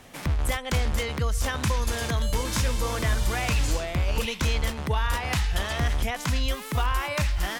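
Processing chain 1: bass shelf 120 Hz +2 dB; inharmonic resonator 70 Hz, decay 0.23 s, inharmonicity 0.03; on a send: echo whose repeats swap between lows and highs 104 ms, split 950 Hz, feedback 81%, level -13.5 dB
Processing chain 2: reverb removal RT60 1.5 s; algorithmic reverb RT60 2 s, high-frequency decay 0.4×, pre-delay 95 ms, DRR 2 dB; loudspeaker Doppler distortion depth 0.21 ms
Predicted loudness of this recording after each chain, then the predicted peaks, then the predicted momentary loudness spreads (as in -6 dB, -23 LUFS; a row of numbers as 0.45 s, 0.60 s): -32.5 LUFS, -27.5 LUFS; -17.0 dBFS, -13.5 dBFS; 2 LU, 2 LU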